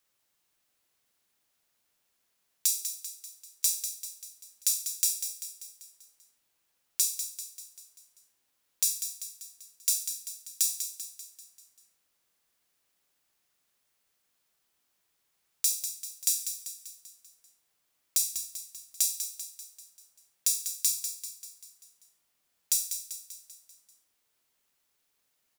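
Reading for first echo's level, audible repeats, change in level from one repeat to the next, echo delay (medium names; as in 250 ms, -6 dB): -9.0 dB, 5, -5.5 dB, 195 ms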